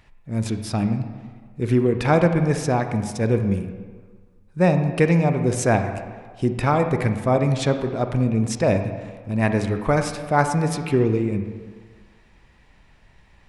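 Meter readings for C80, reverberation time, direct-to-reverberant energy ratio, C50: 9.5 dB, 1.5 s, 7.0 dB, 8.0 dB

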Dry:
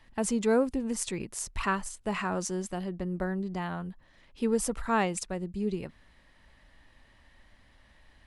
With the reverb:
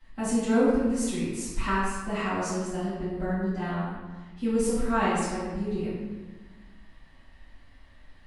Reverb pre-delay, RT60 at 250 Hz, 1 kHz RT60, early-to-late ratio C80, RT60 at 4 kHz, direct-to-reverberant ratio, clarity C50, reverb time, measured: 3 ms, 1.8 s, 1.4 s, 1.0 dB, 0.95 s, -15.0 dB, -1.5 dB, 1.4 s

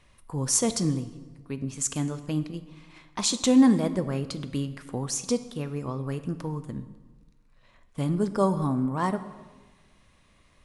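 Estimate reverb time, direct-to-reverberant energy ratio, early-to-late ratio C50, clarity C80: 1.3 s, 11.0 dB, 13.0 dB, 14.5 dB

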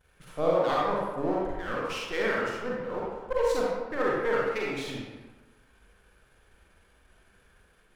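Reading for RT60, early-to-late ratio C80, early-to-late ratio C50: 1.2 s, 1.0 dB, -2.5 dB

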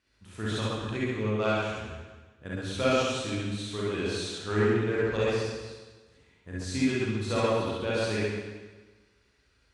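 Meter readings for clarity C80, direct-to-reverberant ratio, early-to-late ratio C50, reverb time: -0.5 dB, -9.0 dB, -5.5 dB, 1.3 s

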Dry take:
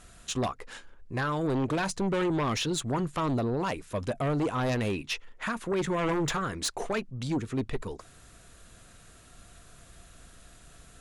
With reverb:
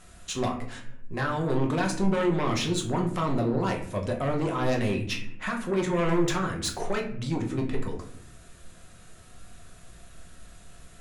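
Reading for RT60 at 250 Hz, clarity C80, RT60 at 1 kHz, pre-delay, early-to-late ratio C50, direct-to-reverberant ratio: 1.2 s, 12.5 dB, 0.55 s, 5 ms, 9.0 dB, 1.0 dB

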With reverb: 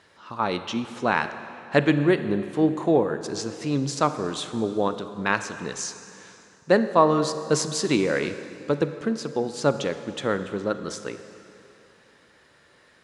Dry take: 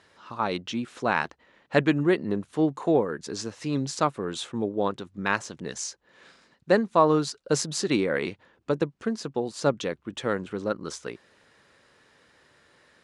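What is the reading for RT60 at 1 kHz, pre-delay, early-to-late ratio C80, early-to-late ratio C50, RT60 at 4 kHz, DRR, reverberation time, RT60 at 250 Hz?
2.9 s, 26 ms, 11.5 dB, 10.5 dB, 2.5 s, 10.0 dB, 2.8 s, 2.6 s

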